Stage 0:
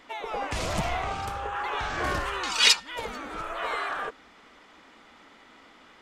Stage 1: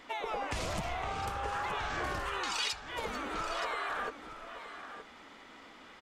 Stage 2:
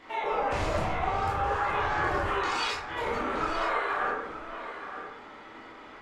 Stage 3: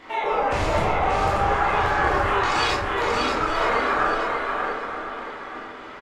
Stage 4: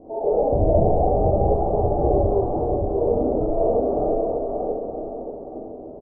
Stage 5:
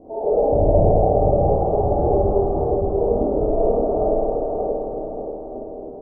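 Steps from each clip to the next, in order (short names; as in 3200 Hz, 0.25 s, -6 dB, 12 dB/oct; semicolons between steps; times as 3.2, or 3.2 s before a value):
compressor 10:1, threshold -32 dBFS, peak gain reduction 18 dB; on a send: echo 0.921 s -11 dB
high shelf 4900 Hz -10.5 dB; reverb RT60 0.80 s, pre-delay 12 ms, DRR -6.5 dB
feedback echo 0.584 s, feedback 26%, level -4 dB; gain +6 dB
Chebyshev low-pass 700 Hz, order 5; gain +7 dB
spring tank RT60 2.2 s, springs 53 ms, chirp 45 ms, DRR 3 dB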